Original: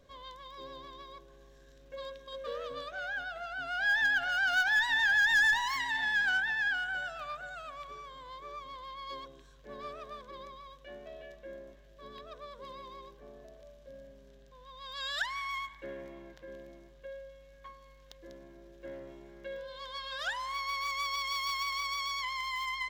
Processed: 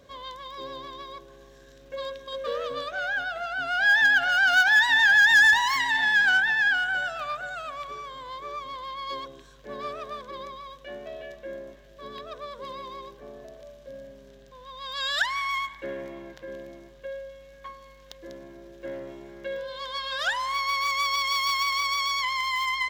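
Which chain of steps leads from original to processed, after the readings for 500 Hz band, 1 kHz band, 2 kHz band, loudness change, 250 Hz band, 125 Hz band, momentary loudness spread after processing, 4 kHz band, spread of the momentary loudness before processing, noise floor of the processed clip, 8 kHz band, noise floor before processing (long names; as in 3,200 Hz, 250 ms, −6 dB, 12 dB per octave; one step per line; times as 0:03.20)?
+8.5 dB, +8.5 dB, +8.5 dB, +8.5 dB, +8.0 dB, can't be measured, 23 LU, +8.5 dB, 23 LU, −51 dBFS, +8.5 dB, −57 dBFS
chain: high-pass filter 92 Hz 6 dB per octave
level +8.5 dB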